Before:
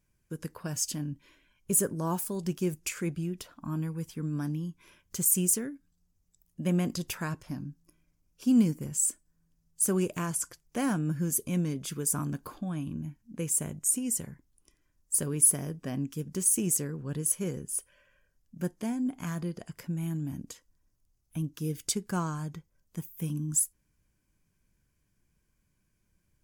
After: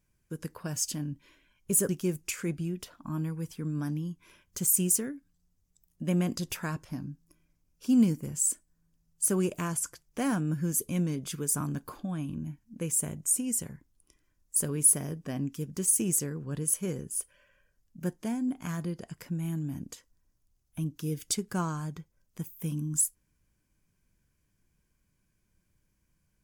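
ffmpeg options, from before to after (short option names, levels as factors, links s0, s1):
-filter_complex "[0:a]asplit=2[s0][s1];[s0]atrim=end=1.892[s2];[s1]atrim=start=2.468[s3];[s2][s3]acrossfade=d=0.004:c1=hsin:c2=hsin"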